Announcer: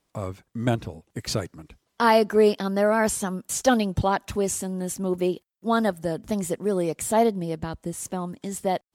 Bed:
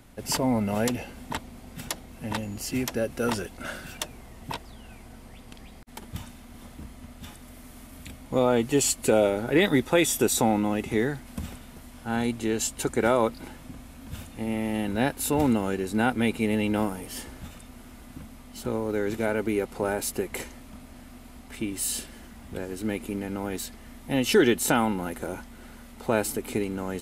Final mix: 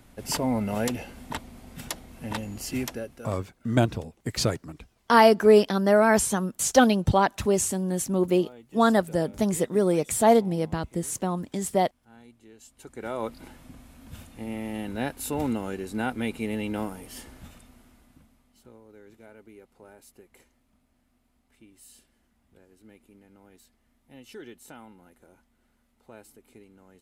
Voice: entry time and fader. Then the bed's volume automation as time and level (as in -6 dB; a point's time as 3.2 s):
3.10 s, +2.0 dB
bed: 2.84 s -1.5 dB
3.5 s -25 dB
12.58 s -25 dB
13.34 s -5 dB
17.52 s -5 dB
18.81 s -23.5 dB